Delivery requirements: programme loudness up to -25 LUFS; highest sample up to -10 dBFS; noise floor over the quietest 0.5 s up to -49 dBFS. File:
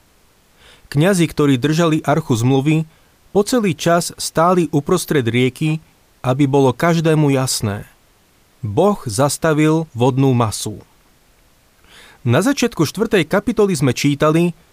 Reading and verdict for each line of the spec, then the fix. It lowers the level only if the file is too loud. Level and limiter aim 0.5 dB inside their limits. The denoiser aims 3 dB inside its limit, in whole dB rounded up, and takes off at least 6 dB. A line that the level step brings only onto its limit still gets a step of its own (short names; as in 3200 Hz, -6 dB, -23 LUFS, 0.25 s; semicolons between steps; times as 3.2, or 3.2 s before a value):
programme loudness -16.5 LUFS: fail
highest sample -4.0 dBFS: fail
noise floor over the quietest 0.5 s -54 dBFS: OK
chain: gain -9 dB